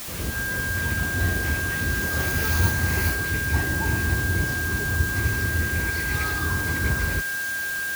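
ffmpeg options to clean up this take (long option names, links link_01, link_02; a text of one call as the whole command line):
ffmpeg -i in.wav -af "bandreject=frequency=1600:width=30,afwtdn=0.018" out.wav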